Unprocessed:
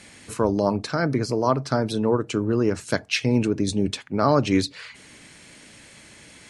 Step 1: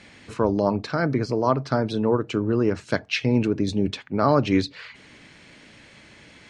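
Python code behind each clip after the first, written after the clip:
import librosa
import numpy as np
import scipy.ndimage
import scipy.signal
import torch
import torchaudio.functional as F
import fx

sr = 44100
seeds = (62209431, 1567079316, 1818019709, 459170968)

y = scipy.signal.sosfilt(scipy.signal.butter(2, 4300.0, 'lowpass', fs=sr, output='sos'), x)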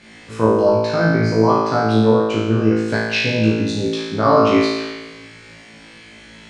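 y = fx.room_flutter(x, sr, wall_m=3.1, rt60_s=1.2)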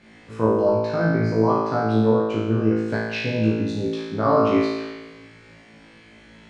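y = fx.high_shelf(x, sr, hz=2400.0, db=-9.5)
y = y * 10.0 ** (-4.0 / 20.0)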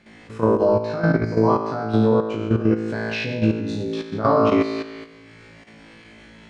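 y = fx.level_steps(x, sr, step_db=10)
y = y * 10.0 ** (4.0 / 20.0)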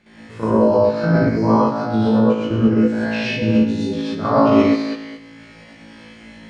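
y = fx.rev_gated(x, sr, seeds[0], gate_ms=150, shape='rising', drr_db=-7.0)
y = y * 10.0 ** (-3.5 / 20.0)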